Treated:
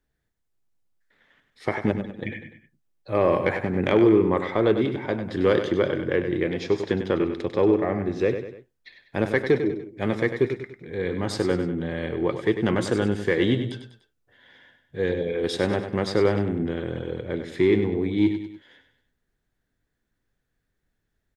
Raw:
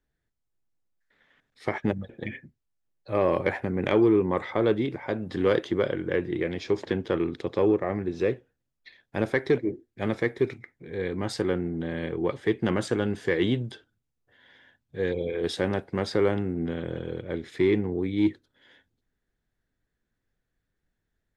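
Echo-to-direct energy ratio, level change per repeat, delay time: −8.0 dB, −7.0 dB, 98 ms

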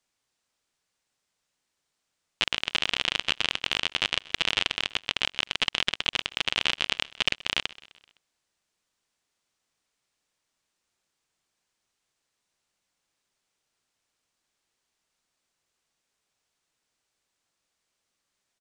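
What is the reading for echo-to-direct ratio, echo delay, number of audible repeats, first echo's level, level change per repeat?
−19.5 dB, 128 ms, 3, −21.0 dB, −5.0 dB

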